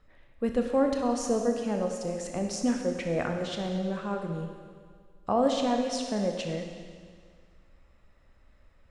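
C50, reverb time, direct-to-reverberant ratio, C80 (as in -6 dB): 4.0 dB, 1.9 s, 3.0 dB, 5.5 dB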